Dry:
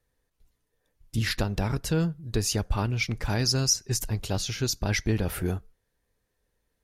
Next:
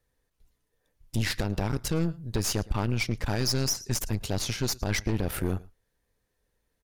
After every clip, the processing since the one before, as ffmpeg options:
ffmpeg -i in.wav -af "aecho=1:1:112:0.0708,aeval=exprs='0.282*(cos(1*acos(clip(val(0)/0.282,-1,1)))-cos(1*PI/2))+0.0316*(cos(8*acos(clip(val(0)/0.282,-1,1)))-cos(8*PI/2))':channel_layout=same,alimiter=limit=-17dB:level=0:latency=1:release=71" out.wav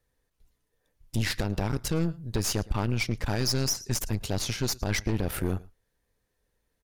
ffmpeg -i in.wav -af anull out.wav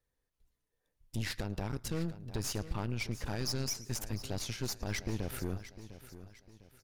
ffmpeg -i in.wav -af "aecho=1:1:703|1406|2109|2812:0.2|0.0758|0.0288|0.0109,volume=-8.5dB" out.wav

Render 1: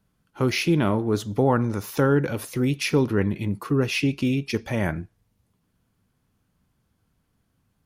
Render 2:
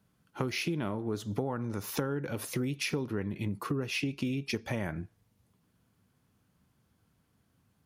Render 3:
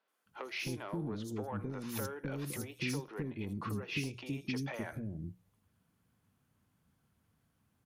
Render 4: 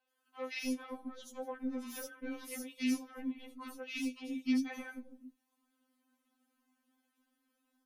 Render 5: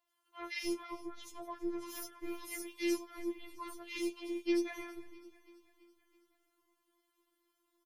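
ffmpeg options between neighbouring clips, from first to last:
ffmpeg -i in.wav -af "highpass=70,acompressor=threshold=-29dB:ratio=10" out.wav
ffmpeg -i in.wav -filter_complex "[0:a]bandreject=frequency=60:width_type=h:width=6,bandreject=frequency=120:width_type=h:width=6,bandreject=frequency=180:width_type=h:width=6,asoftclip=type=tanh:threshold=-23.5dB,acrossover=split=400|4800[link_01][link_02][link_03];[link_03]adelay=80[link_04];[link_01]adelay=260[link_05];[link_05][link_02][link_04]amix=inputs=3:normalize=0,volume=-3dB" out.wav
ffmpeg -i in.wav -af "afftfilt=real='re*3.46*eq(mod(b,12),0)':imag='im*3.46*eq(mod(b,12),0)':win_size=2048:overlap=0.75,volume=1dB" out.wav
ffmpeg -i in.wav -af "afftfilt=real='hypot(re,im)*cos(PI*b)':imag='0':win_size=512:overlap=0.75,aecho=1:1:330|660|990|1320|1650:0.112|0.0651|0.0377|0.0219|0.0127,volume=5dB" out.wav

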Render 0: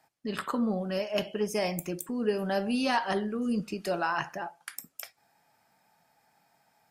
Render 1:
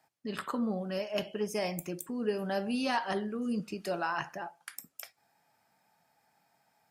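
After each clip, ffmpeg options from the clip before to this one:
ffmpeg -i in.wav -af "highpass=47,volume=-3.5dB" out.wav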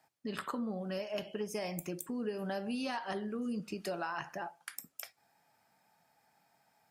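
ffmpeg -i in.wav -af "acompressor=threshold=-34dB:ratio=5" out.wav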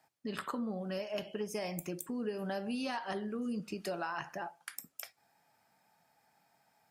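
ffmpeg -i in.wav -af anull out.wav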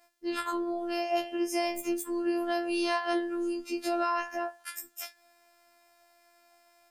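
ffmpeg -i in.wav -af "afftfilt=real='hypot(re,im)*cos(PI*b)':imag='0':win_size=512:overlap=0.75,bandreject=frequency=288:width_type=h:width=4,bandreject=frequency=576:width_type=h:width=4,bandreject=frequency=864:width_type=h:width=4,bandreject=frequency=1152:width_type=h:width=4,bandreject=frequency=1440:width_type=h:width=4,bandreject=frequency=1728:width_type=h:width=4,bandreject=frequency=2016:width_type=h:width=4,bandreject=frequency=2304:width_type=h:width=4,bandreject=frequency=2592:width_type=h:width=4,bandreject=frequency=2880:width_type=h:width=4,bandreject=frequency=3168:width_type=h:width=4,bandreject=frequency=3456:width_type=h:width=4,afftfilt=real='re*2*eq(mod(b,4),0)':imag='im*2*eq(mod(b,4),0)':win_size=2048:overlap=0.75,volume=9dB" out.wav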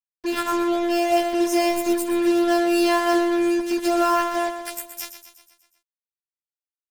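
ffmpeg -i in.wav -filter_complex "[0:a]acrusher=bits=5:mix=0:aa=0.5,asuperstop=centerf=1200:order=12:qfactor=4.9,asplit=2[link_01][link_02];[link_02]aecho=0:1:122|244|366|488|610|732:0.316|0.177|0.0992|0.0555|0.0311|0.0174[link_03];[link_01][link_03]amix=inputs=2:normalize=0,volume=7.5dB" out.wav

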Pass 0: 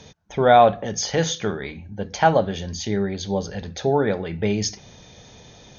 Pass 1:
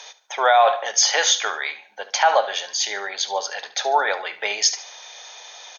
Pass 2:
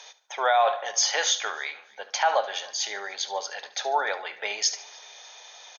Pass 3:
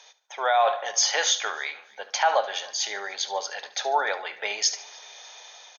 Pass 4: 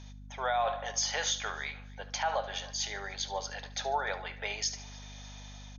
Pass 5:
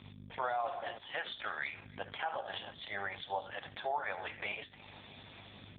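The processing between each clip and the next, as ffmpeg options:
ffmpeg -i in.wav -af "highpass=frequency=740:width=0.5412,highpass=frequency=740:width=1.3066,aecho=1:1:73|146|219:0.158|0.0571|0.0205,alimiter=level_in=14dB:limit=-1dB:release=50:level=0:latency=1,volume=-4.5dB" out.wav
ffmpeg -i in.wav -filter_complex "[0:a]asplit=2[link_01][link_02];[link_02]adelay=297,lowpass=frequency=3600:poles=1,volume=-23.5dB,asplit=2[link_03][link_04];[link_04]adelay=297,lowpass=frequency=3600:poles=1,volume=0.45,asplit=2[link_05][link_06];[link_06]adelay=297,lowpass=frequency=3600:poles=1,volume=0.45[link_07];[link_01][link_03][link_05][link_07]amix=inputs=4:normalize=0,volume=-6dB" out.wav
ffmpeg -i in.wav -af "dynaudnorm=framelen=180:gausssize=5:maxgain=7dB,volume=-5.5dB" out.wav
ffmpeg -i in.wav -af "alimiter=limit=-14dB:level=0:latency=1:release=168,aeval=exprs='val(0)+0.01*(sin(2*PI*50*n/s)+sin(2*PI*2*50*n/s)/2+sin(2*PI*3*50*n/s)/3+sin(2*PI*4*50*n/s)/4+sin(2*PI*5*50*n/s)/5)':channel_layout=same,volume=-6.5dB" out.wav
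ffmpeg -i in.wav -af "equalizer=frequency=350:width_type=o:width=0.47:gain=-5.5,acompressor=threshold=-36dB:ratio=10,volume=5.5dB" -ar 8000 -c:a libopencore_amrnb -b:a 4750 out.amr

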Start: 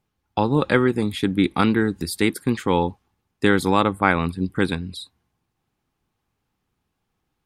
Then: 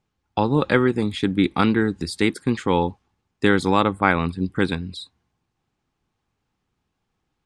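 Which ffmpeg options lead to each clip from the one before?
ffmpeg -i in.wav -af "lowpass=frequency=8400:width=0.5412,lowpass=frequency=8400:width=1.3066" out.wav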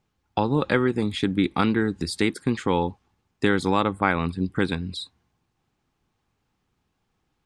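ffmpeg -i in.wav -af "acompressor=threshold=-28dB:ratio=1.5,volume=2dB" out.wav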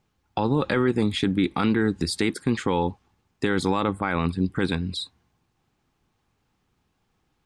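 ffmpeg -i in.wav -af "alimiter=limit=-14.5dB:level=0:latency=1:release=12,volume=2.5dB" out.wav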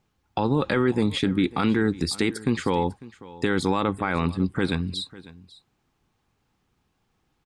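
ffmpeg -i in.wav -af "aecho=1:1:549:0.106" out.wav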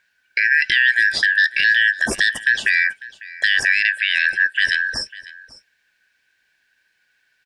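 ffmpeg -i in.wav -af "afftfilt=real='real(if(lt(b,272),68*(eq(floor(b/68),0)*3+eq(floor(b/68),1)*0+eq(floor(b/68),2)*1+eq(floor(b/68),3)*2)+mod(b,68),b),0)':imag='imag(if(lt(b,272),68*(eq(floor(b/68),0)*3+eq(floor(b/68),1)*0+eq(floor(b/68),2)*1+eq(floor(b/68),3)*2)+mod(b,68),b),0)':win_size=2048:overlap=0.75,volume=6dB" out.wav

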